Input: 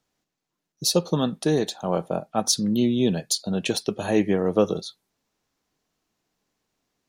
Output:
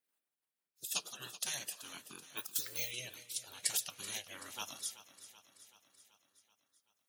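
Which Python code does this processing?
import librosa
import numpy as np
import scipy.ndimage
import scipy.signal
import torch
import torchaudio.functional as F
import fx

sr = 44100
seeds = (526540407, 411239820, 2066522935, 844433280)

p1 = fx.spec_box(x, sr, start_s=2.45, length_s=0.56, low_hz=1200.0, high_hz=11000.0, gain_db=9)
p2 = np.diff(p1, prepend=0.0)
p3 = fx.spec_gate(p2, sr, threshold_db=-15, keep='weak')
p4 = fx.high_shelf(p3, sr, hz=6200.0, db=4.5)
p5 = fx.over_compress(p4, sr, threshold_db=-38.0, ratio=-0.5)
p6 = fx.rotary_switch(p5, sr, hz=6.0, then_hz=0.9, switch_at_s=1.14)
p7 = p6 + fx.echo_feedback(p6, sr, ms=381, feedback_pct=60, wet_db=-15, dry=0)
p8 = fx.resample_bad(p7, sr, factor=2, down='filtered', up='zero_stuff', at=(2.37, 2.91))
y = F.gain(torch.from_numpy(p8), 4.0).numpy()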